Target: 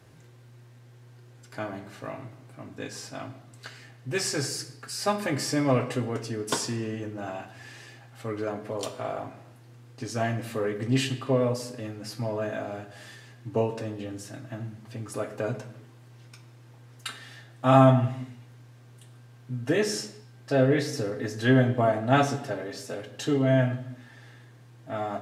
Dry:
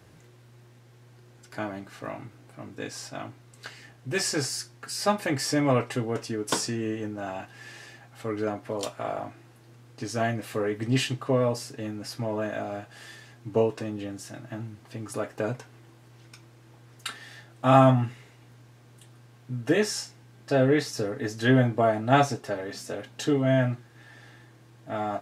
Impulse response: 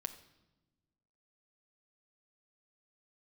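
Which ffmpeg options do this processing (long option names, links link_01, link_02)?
-filter_complex "[1:a]atrim=start_sample=2205,afade=type=out:start_time=0.39:duration=0.01,atrim=end_sample=17640,asetrate=38367,aresample=44100[link_01];[0:a][link_01]afir=irnorm=-1:irlink=0"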